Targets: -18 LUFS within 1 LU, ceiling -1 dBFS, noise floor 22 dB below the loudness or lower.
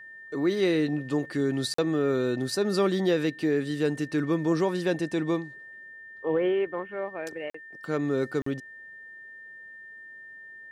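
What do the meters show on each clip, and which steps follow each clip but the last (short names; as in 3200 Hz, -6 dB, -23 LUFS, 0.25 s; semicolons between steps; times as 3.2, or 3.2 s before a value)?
dropouts 3; longest dropout 44 ms; steady tone 1800 Hz; tone level -43 dBFS; loudness -27.5 LUFS; peak -14.0 dBFS; loudness target -18.0 LUFS
-> interpolate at 1.74/7.5/8.42, 44 ms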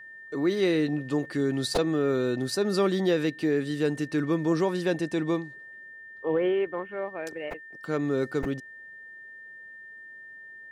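dropouts 0; steady tone 1800 Hz; tone level -43 dBFS
-> notch 1800 Hz, Q 30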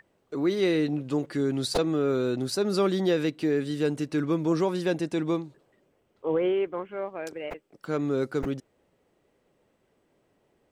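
steady tone none; loudness -27.5 LUFS; peak -13.0 dBFS; loudness target -18.0 LUFS
-> gain +9.5 dB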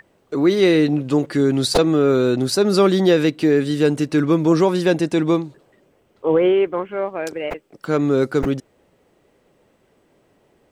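loudness -18.0 LUFS; peak -3.5 dBFS; noise floor -61 dBFS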